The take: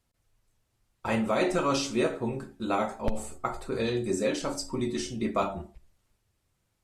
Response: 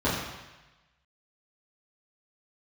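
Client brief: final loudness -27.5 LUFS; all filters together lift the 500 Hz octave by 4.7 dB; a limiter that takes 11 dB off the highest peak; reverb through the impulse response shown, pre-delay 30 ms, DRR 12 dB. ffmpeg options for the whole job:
-filter_complex "[0:a]equalizer=f=500:t=o:g=6,alimiter=limit=0.0794:level=0:latency=1,asplit=2[s0][s1];[1:a]atrim=start_sample=2205,adelay=30[s2];[s1][s2]afir=irnorm=-1:irlink=0,volume=0.0501[s3];[s0][s3]amix=inputs=2:normalize=0,volume=1.58"

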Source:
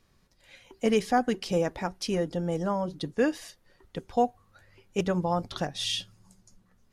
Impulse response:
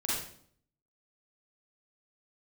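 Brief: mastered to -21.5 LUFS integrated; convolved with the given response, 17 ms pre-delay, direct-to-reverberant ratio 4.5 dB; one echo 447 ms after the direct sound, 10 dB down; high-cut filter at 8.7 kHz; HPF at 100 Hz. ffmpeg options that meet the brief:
-filter_complex "[0:a]highpass=100,lowpass=8700,aecho=1:1:447:0.316,asplit=2[s0][s1];[1:a]atrim=start_sample=2205,adelay=17[s2];[s1][s2]afir=irnorm=-1:irlink=0,volume=0.299[s3];[s0][s3]amix=inputs=2:normalize=0,volume=2.11"

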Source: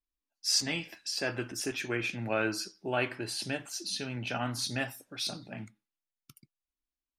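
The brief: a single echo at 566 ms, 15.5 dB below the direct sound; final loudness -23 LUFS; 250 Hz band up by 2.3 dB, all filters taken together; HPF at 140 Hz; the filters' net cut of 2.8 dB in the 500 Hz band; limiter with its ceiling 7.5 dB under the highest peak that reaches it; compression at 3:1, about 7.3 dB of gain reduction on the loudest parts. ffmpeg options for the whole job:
-af "highpass=140,equalizer=f=250:t=o:g=5,equalizer=f=500:t=o:g=-5.5,acompressor=threshold=0.0224:ratio=3,alimiter=level_in=1.78:limit=0.0631:level=0:latency=1,volume=0.562,aecho=1:1:566:0.168,volume=6.31"

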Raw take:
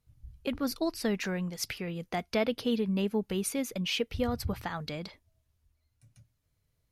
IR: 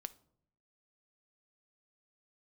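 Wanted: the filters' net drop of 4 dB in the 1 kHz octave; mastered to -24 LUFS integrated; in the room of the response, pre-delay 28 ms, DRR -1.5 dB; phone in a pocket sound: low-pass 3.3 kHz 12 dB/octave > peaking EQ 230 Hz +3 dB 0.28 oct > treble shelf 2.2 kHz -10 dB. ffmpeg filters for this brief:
-filter_complex "[0:a]equalizer=f=1000:t=o:g=-4,asplit=2[s0][s1];[1:a]atrim=start_sample=2205,adelay=28[s2];[s1][s2]afir=irnorm=-1:irlink=0,volume=1.88[s3];[s0][s3]amix=inputs=2:normalize=0,lowpass=3300,equalizer=f=230:t=o:w=0.28:g=3,highshelf=f=2200:g=-10,volume=1.78"

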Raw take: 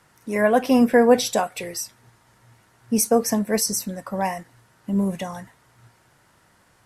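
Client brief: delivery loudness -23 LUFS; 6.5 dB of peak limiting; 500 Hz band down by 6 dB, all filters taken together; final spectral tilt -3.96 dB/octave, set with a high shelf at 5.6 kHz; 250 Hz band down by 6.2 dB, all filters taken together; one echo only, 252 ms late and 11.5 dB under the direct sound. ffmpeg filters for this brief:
-af "equalizer=f=250:t=o:g=-6,equalizer=f=500:t=o:g=-5.5,highshelf=f=5600:g=-3,alimiter=limit=0.168:level=0:latency=1,aecho=1:1:252:0.266,volume=1.68"

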